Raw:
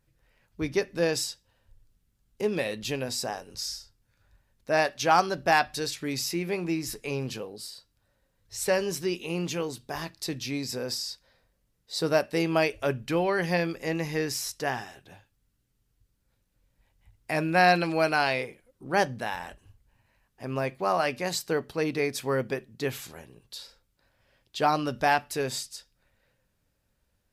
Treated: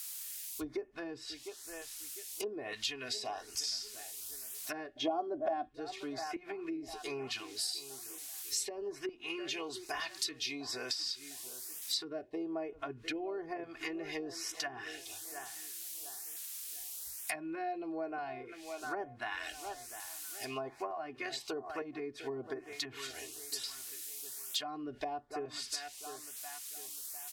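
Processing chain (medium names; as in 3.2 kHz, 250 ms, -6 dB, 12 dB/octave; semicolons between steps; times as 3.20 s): peaking EQ 6.3 kHz -2.5 dB 0.76 oct; comb 2.8 ms, depth 98%; feedback echo behind a low-pass 702 ms, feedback 37%, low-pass 1.4 kHz, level -14.5 dB; in parallel at -3.5 dB: word length cut 8-bit, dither triangular; on the sum: low-pass that closes with the level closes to 450 Hz, closed at -16.5 dBFS; 4.96–5.69 s: small resonant body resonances 290/600/3300 Hz, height 15 dB, ringing for 20 ms; LFO notch saw up 1.1 Hz 310–4800 Hz; pre-emphasis filter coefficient 0.97; compression 2.5:1, threshold -45 dBFS, peak gain reduction 12 dB; trim +9 dB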